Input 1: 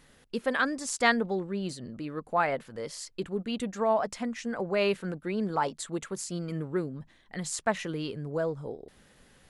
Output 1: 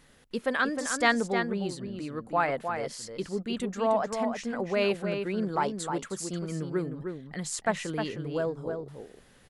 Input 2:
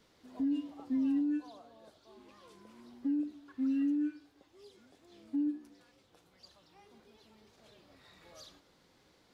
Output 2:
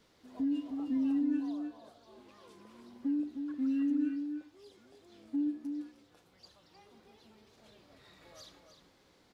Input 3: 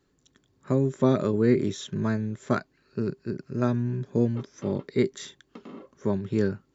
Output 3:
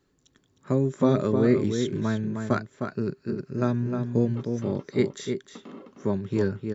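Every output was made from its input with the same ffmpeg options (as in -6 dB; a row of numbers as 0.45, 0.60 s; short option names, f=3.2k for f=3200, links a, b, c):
-filter_complex "[0:a]asplit=2[a][b];[b]adelay=309,volume=-6dB,highshelf=f=4k:g=-6.95[c];[a][c]amix=inputs=2:normalize=0"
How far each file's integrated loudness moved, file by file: +0.5, 0.0, +0.5 LU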